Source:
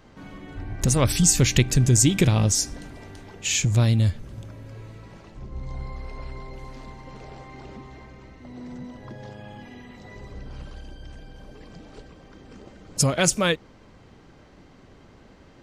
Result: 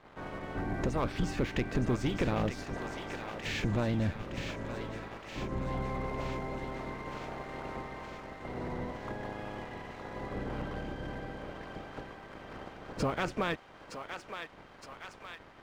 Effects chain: spectral peaks clipped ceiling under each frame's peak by 16 dB; low-pass 1.7 kHz 12 dB/octave; compression 2:1, threshold -33 dBFS, peak gain reduction 11 dB; waveshaping leveller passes 2; on a send: thinning echo 916 ms, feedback 69%, high-pass 860 Hz, level -6 dB; on the sum: trim -6.5 dB

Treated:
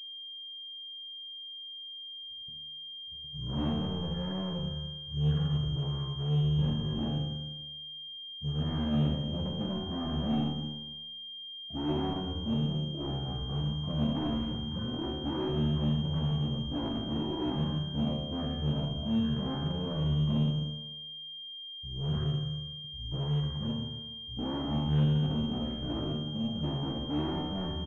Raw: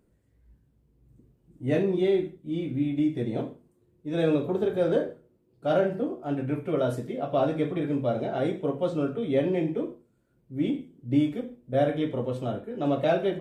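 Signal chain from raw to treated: bass shelf 100 Hz -9.5 dB; gate -59 dBFS, range -6 dB; wide varispeed 0.481×; in parallel at -2 dB: gain riding within 4 dB 0.5 s; on the sum: one-sided clip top -23 dBFS, bottom -20 dBFS; waveshaping leveller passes 2; feedback comb 75 Hz, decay 1.2 s, harmonics all, mix 90%; delay 282 ms -21 dB; class-D stage that switches slowly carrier 3.2 kHz; trim +4 dB

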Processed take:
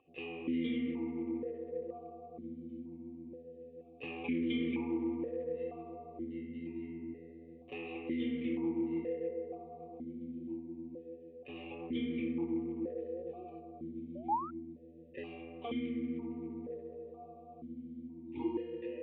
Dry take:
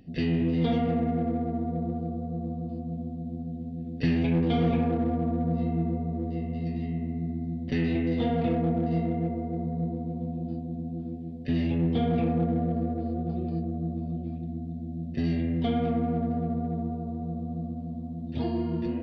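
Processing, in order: static phaser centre 1 kHz, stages 8; painted sound rise, 14.15–14.51 s, 550–1400 Hz -30 dBFS; stepped vowel filter 2.1 Hz; trim +7.5 dB

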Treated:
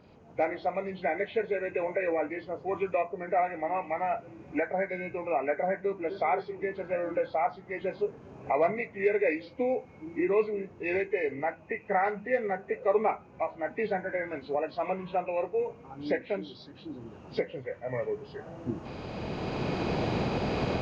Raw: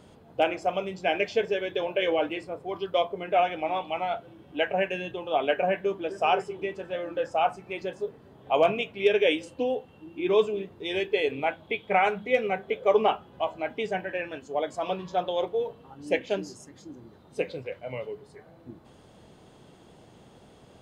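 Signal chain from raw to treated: knee-point frequency compression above 1.4 kHz 1.5:1; recorder AGC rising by 12 dB/s; trim -4 dB

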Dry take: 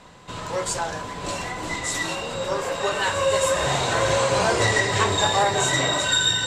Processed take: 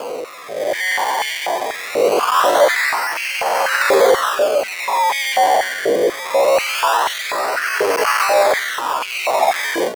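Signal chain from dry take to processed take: one-bit comparator; level rider gain up to 11.5 dB; in parallel at -2 dB: peak limiter -15 dBFS, peak gain reduction 8.5 dB; on the sum: decimation with a swept rate 23×, swing 100% 0.34 Hz; tempo 0.65×; rotary cabinet horn 0.7 Hz; step-sequenced high-pass 4.1 Hz 460–2400 Hz; trim -8.5 dB

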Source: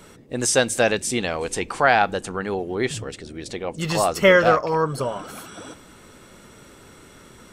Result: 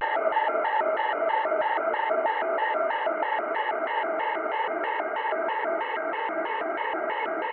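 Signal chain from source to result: formants replaced by sine waves; comb 1.2 ms, depth 81%; repeats whose band climbs or falls 114 ms, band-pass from 460 Hz, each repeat 0.7 oct, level -5.5 dB; Paulstretch 47×, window 1.00 s, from 2.42 s; vibrato with a chosen wave square 3.1 Hz, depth 250 cents

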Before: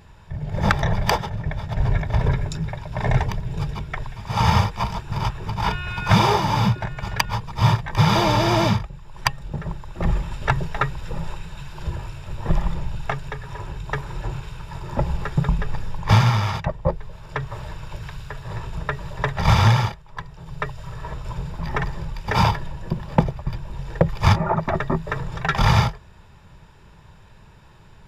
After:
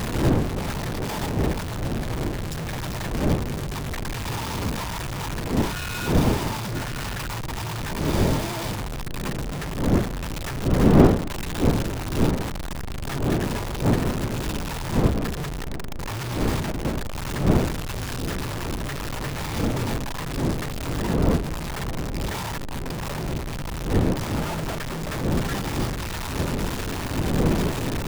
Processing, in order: one-bit comparator; wind noise 300 Hz -19 dBFS; trim -7 dB

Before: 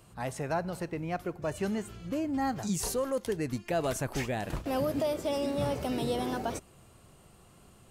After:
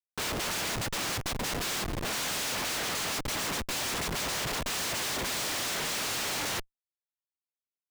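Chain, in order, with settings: noise-vocoded speech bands 1; Schmitt trigger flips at -40.5 dBFS; trim +1 dB

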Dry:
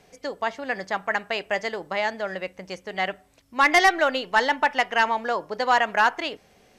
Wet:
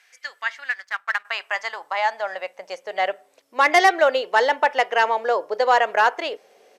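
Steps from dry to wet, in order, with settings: resampled via 32 kHz; 0.70–1.25 s: power-law waveshaper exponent 1.4; high-pass sweep 1.7 kHz -> 470 Hz, 0.59–3.33 s

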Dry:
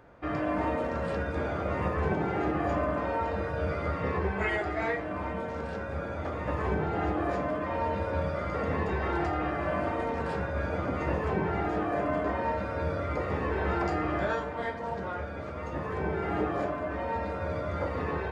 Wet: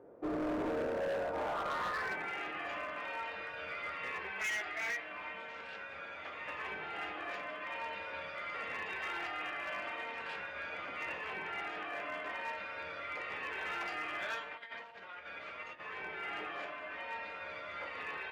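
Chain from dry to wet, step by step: 14.51–15.80 s: compressor with a negative ratio -37 dBFS, ratio -0.5; band-pass sweep 410 Hz -> 2.7 kHz, 0.84–2.37 s; hard clipper -38.5 dBFS, distortion -9 dB; trim +5.5 dB

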